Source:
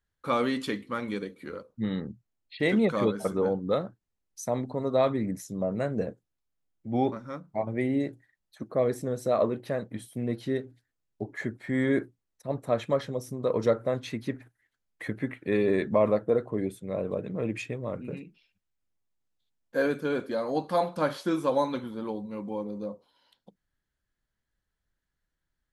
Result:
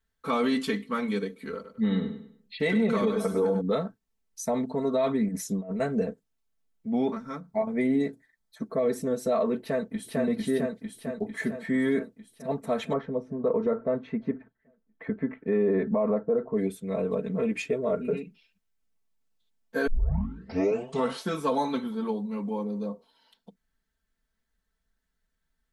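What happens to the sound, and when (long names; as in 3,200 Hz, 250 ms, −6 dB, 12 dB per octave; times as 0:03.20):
0:01.54–0:03.61: repeating echo 99 ms, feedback 35%, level −9 dB
0:05.28–0:05.80: compressor whose output falls as the input rises −34 dBFS, ratio −0.5
0:07.24–0:08.80: notch filter 2,800 Hz, Q 5.4
0:09.61–0:10.20: delay throw 450 ms, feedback 65%, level −0.5 dB
0:12.93–0:16.56: low-pass filter 1,300 Hz
0:17.69–0:18.22: hollow resonant body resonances 420/620/1,400 Hz, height 11 dB
0:19.87: tape start 1.36 s
whole clip: comb filter 4.5 ms, depth 97%; brickwall limiter −17 dBFS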